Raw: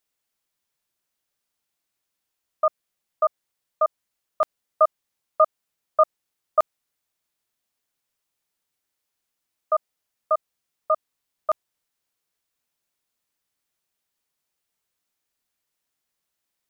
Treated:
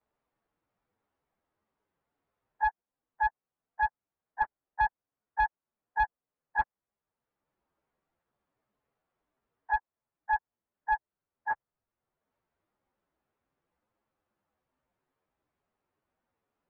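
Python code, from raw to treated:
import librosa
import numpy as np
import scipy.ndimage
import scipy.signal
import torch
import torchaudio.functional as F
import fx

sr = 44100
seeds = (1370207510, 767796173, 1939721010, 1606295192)

y = fx.pitch_bins(x, sr, semitones=5.5)
y = np.clip(y, -10.0 ** (-17.5 / 20.0), 10.0 ** (-17.5 / 20.0))
y = scipy.signal.sosfilt(scipy.signal.butter(2, 1100.0, 'lowpass', fs=sr, output='sos'), y)
y = fx.band_squash(y, sr, depth_pct=40)
y = y * 10.0 ** (2.0 / 20.0)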